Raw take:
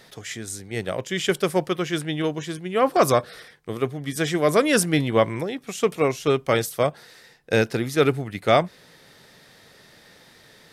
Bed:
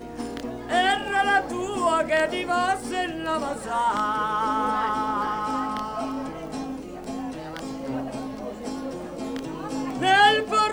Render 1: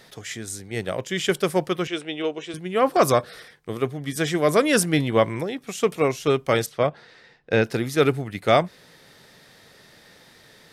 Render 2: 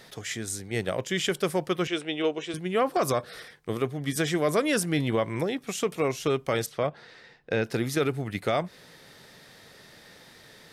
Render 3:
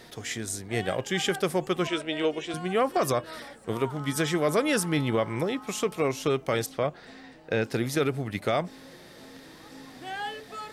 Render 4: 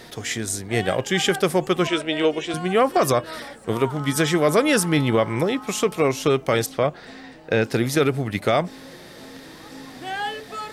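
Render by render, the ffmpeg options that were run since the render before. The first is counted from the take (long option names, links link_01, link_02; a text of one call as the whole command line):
ffmpeg -i in.wav -filter_complex "[0:a]asettb=1/sr,asplit=3[link_01][link_02][link_03];[link_01]atrim=end=1.874[link_04];[link_02]atrim=start=1.87:end=2.54,asetpts=PTS-STARTPTS,afade=type=in:duration=0.004:curve=qsin,afade=type=out:start_time=0.666:duration=0.004:curve=qsin,highpass=360,equalizer=frequency=420:width_type=q:width=4:gain=4,equalizer=frequency=1000:width_type=q:width=4:gain=-4,equalizer=frequency=1700:width_type=q:width=4:gain=-7,equalizer=frequency=2600:width_type=q:width=4:gain=4,equalizer=frequency=4700:width_type=q:width=4:gain=-8,equalizer=frequency=6700:width_type=q:width=4:gain=-8,lowpass=frequency=7900:width=0.5412,lowpass=frequency=7900:width=1.3066[link_05];[link_03]atrim=start=2.536[link_06];[link_04][link_05]acrossfade=duration=0.004:curve1=hsin:curve2=qsin[link_07];[link_07][link_06]acrossfade=duration=0.004:curve1=qsin:curve2=hsin,asettb=1/sr,asplit=3[link_08][link_09][link_10];[link_08]atrim=end=6.664[link_11];[link_09]atrim=start=6.66:end=7.64,asetpts=PTS-STARTPTS,afade=type=in:duration=0.004:curve=qsin,afade=type=out:start_time=0.976:duration=0.004:curve=qsin,lowpass=3700[link_12];[link_10]atrim=start=7.636[link_13];[link_11][link_12]acrossfade=duration=0.004:curve1=hsin:curve2=qsin[link_14];[link_14][link_13]acrossfade=duration=0.004:curve1=qsin:curve2=hsin" out.wav
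ffmpeg -i in.wav -af "alimiter=limit=-15.5dB:level=0:latency=1:release=199" out.wav
ffmpeg -i in.wav -i bed.wav -filter_complex "[1:a]volume=-18dB[link_01];[0:a][link_01]amix=inputs=2:normalize=0" out.wav
ffmpeg -i in.wav -af "volume=6.5dB" out.wav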